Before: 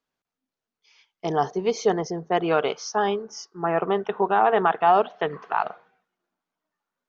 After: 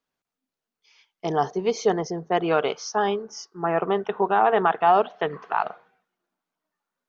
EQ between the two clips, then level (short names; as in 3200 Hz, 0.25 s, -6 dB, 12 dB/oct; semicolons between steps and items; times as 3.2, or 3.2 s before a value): notches 50/100 Hz; 0.0 dB